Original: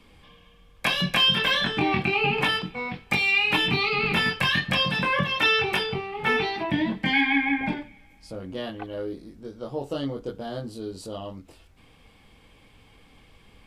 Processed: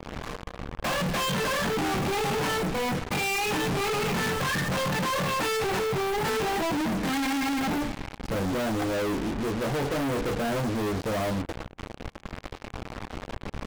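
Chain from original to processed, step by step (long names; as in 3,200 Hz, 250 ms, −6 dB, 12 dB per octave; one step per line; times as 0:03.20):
low-pass filter 1,100 Hz 12 dB per octave
leveller curve on the samples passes 5
in parallel at +2 dB: downward compressor, threshold −29 dBFS, peak gain reduction 13 dB
on the sum: leveller curve on the samples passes 2
gain into a clipping stage and back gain 26.5 dB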